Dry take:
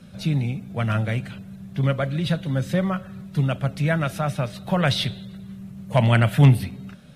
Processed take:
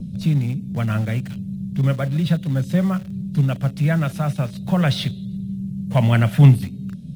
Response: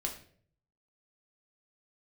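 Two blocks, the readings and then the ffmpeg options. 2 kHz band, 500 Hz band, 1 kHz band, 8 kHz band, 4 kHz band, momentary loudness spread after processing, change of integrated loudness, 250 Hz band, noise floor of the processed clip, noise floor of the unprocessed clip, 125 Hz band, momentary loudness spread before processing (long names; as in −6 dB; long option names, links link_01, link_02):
−2.0 dB, −1.5 dB, −2.0 dB, can't be measured, −2.0 dB, 14 LU, +2.5 dB, +4.0 dB, −34 dBFS, −42 dBFS, +3.5 dB, 20 LU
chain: -filter_complex "[0:a]equalizer=frequency=170:width_type=o:width=1.2:gain=7,acrossover=split=240|530|2800[link_01][link_02][link_03][link_04];[link_01]acompressor=mode=upward:threshold=-18dB:ratio=2.5[link_05];[link_03]acrusher=bits=6:mix=0:aa=0.000001[link_06];[link_05][link_02][link_06][link_04]amix=inputs=4:normalize=0,volume=-2dB"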